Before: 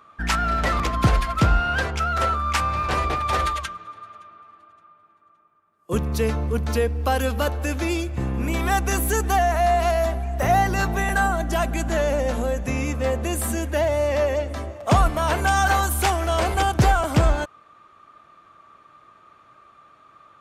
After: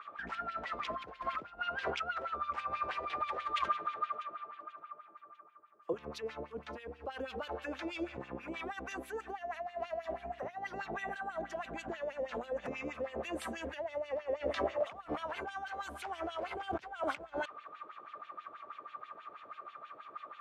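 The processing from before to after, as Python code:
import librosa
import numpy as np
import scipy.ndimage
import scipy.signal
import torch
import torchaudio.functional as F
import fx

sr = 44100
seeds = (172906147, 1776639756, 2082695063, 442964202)

y = fx.high_shelf(x, sr, hz=8500.0, db=-7.5)
y = fx.over_compress(y, sr, threshold_db=-31.0, ratio=-1.0)
y = fx.filter_lfo_bandpass(y, sr, shape='sine', hz=6.2, low_hz=420.0, high_hz=3300.0, q=2.2)
y = F.gain(torch.from_numpy(y), 1.0).numpy()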